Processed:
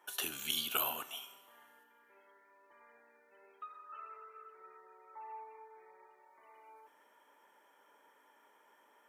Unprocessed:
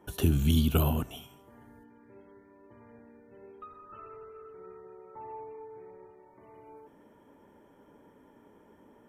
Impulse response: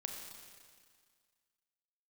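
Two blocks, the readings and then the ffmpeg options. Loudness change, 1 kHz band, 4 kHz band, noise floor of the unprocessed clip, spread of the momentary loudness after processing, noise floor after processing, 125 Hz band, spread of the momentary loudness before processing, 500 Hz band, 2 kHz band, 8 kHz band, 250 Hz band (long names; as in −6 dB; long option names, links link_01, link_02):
−10.5 dB, −2.0 dB, +2.0 dB, −60 dBFS, 25 LU, −68 dBFS, below −35 dB, 23 LU, −13.0 dB, +1.5 dB, can't be measured, −24.0 dB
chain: -filter_complex "[0:a]highpass=1100,asplit=2[link_01][link_02];[1:a]atrim=start_sample=2205,adelay=39[link_03];[link_02][link_03]afir=irnorm=-1:irlink=0,volume=-13.5dB[link_04];[link_01][link_04]amix=inputs=2:normalize=0,volume=2dB"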